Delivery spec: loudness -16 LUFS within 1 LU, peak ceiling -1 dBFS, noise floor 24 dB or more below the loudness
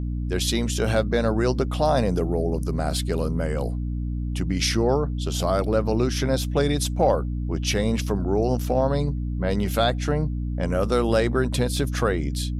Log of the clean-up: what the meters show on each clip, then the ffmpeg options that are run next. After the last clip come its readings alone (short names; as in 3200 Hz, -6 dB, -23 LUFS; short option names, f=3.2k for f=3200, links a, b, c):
hum 60 Hz; harmonics up to 300 Hz; hum level -24 dBFS; loudness -24.0 LUFS; peak -7.5 dBFS; loudness target -16.0 LUFS
-> -af "bandreject=f=60:t=h:w=6,bandreject=f=120:t=h:w=6,bandreject=f=180:t=h:w=6,bandreject=f=240:t=h:w=6,bandreject=f=300:t=h:w=6"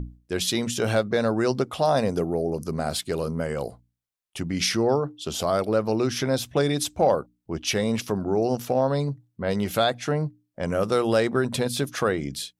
hum none; loudness -25.0 LUFS; peak -9.0 dBFS; loudness target -16.0 LUFS
-> -af "volume=9dB,alimiter=limit=-1dB:level=0:latency=1"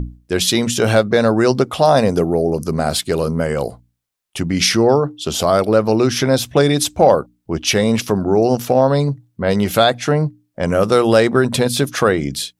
loudness -16.0 LUFS; peak -1.0 dBFS; noise floor -69 dBFS